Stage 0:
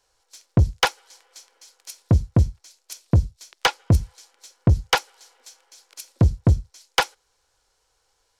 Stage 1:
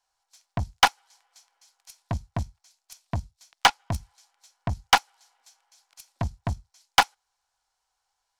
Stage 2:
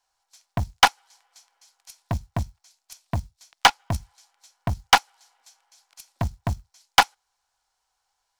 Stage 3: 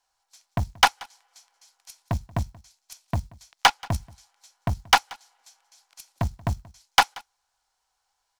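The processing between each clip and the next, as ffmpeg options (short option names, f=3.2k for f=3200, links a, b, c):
-af "lowshelf=f=600:t=q:w=3:g=-7,aeval=exprs='0.668*(cos(1*acos(clip(val(0)/0.668,-1,1)))-cos(1*PI/2))+0.0211*(cos(6*acos(clip(val(0)/0.668,-1,1)))-cos(6*PI/2))+0.0668*(cos(7*acos(clip(val(0)/0.668,-1,1)))-cos(7*PI/2))':c=same"
-af "acrusher=bits=7:mode=log:mix=0:aa=0.000001,volume=2.5dB"
-af "asoftclip=type=tanh:threshold=-3.5dB,aecho=1:1:181:0.0668"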